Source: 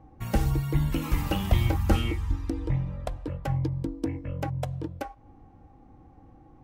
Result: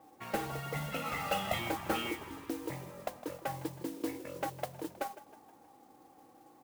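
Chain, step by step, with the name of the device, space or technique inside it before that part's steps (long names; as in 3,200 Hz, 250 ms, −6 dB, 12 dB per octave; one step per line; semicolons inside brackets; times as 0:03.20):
0:00.52–0:01.59: comb filter 1.5 ms, depth 88%
echo with shifted repeats 158 ms, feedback 49%, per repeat +37 Hz, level −17.5 dB
carbon microphone (band-pass filter 390–3,200 Hz; soft clipping −23.5 dBFS, distortion −14 dB; noise that follows the level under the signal 13 dB)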